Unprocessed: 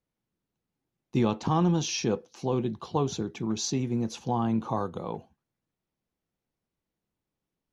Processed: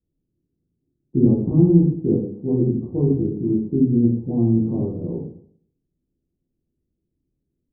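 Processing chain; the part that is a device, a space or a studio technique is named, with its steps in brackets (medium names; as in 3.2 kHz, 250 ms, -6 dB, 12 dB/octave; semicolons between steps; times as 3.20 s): next room (low-pass 380 Hz 24 dB/octave; reverberation RT60 0.60 s, pre-delay 12 ms, DRR -6.5 dB); trim +5 dB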